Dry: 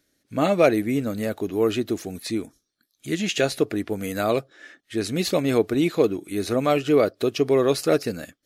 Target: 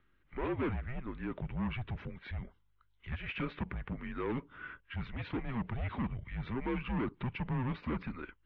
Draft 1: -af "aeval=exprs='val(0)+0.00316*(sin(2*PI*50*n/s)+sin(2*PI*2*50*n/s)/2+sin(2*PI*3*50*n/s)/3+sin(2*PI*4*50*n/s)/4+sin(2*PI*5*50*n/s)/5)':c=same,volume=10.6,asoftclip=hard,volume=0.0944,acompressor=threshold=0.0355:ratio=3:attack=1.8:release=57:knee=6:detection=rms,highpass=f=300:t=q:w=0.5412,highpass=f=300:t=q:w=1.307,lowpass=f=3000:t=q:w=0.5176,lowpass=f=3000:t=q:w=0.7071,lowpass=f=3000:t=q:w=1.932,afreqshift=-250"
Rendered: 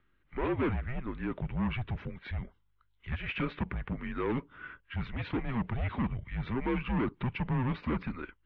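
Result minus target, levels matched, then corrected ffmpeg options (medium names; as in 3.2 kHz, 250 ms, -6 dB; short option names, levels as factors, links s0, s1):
compression: peak gain reduction -4 dB
-af "aeval=exprs='val(0)+0.00316*(sin(2*PI*50*n/s)+sin(2*PI*2*50*n/s)/2+sin(2*PI*3*50*n/s)/3+sin(2*PI*4*50*n/s)/4+sin(2*PI*5*50*n/s)/5)':c=same,volume=10.6,asoftclip=hard,volume=0.0944,acompressor=threshold=0.0178:ratio=3:attack=1.8:release=57:knee=6:detection=rms,highpass=f=300:t=q:w=0.5412,highpass=f=300:t=q:w=1.307,lowpass=f=3000:t=q:w=0.5176,lowpass=f=3000:t=q:w=0.7071,lowpass=f=3000:t=q:w=1.932,afreqshift=-250"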